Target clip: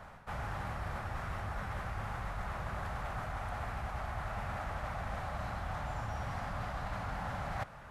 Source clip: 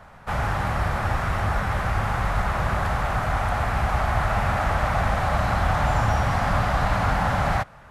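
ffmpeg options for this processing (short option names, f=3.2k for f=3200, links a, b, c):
-af "areverse,acompressor=threshold=-33dB:ratio=6,areverse,volume=-3.5dB"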